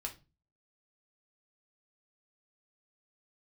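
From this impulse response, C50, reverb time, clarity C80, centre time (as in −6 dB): 14.0 dB, 0.30 s, 21.5 dB, 11 ms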